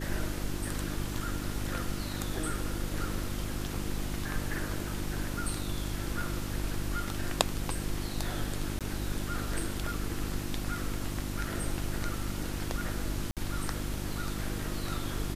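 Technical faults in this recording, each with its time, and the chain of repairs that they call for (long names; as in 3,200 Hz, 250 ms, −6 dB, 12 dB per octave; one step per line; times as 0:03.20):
mains hum 50 Hz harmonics 7 −37 dBFS
0:08.79–0:08.81: drop-out 17 ms
0:13.31–0:13.37: drop-out 57 ms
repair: hum removal 50 Hz, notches 7
repair the gap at 0:08.79, 17 ms
repair the gap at 0:13.31, 57 ms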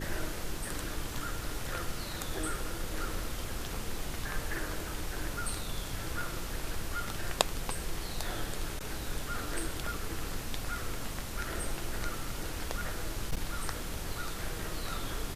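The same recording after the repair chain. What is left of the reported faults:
none of them is left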